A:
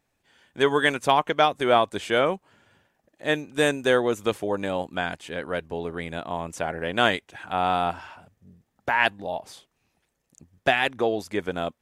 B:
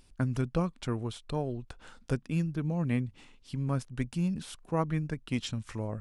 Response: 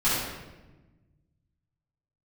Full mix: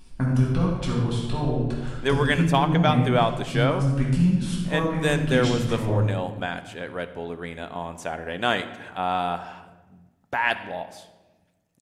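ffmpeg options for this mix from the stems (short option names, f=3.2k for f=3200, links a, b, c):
-filter_complex "[0:a]adelay=1450,volume=-3dB,asplit=2[a][b];[b]volume=-23.5dB[c];[1:a]acompressor=threshold=-30dB:ratio=6,volume=-1dB,asplit=2[d][e];[e]volume=-4dB[f];[2:a]atrim=start_sample=2205[g];[c][f]amix=inputs=2:normalize=0[h];[h][g]afir=irnorm=-1:irlink=0[i];[a][d][i]amix=inputs=3:normalize=0"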